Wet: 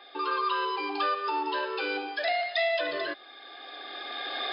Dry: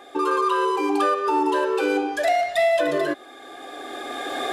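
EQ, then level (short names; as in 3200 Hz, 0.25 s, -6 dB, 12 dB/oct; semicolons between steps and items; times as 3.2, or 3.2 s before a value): HPF 690 Hz 6 dB/oct; brick-wall FIR low-pass 5200 Hz; high shelf 2400 Hz +11.5 dB; -7.0 dB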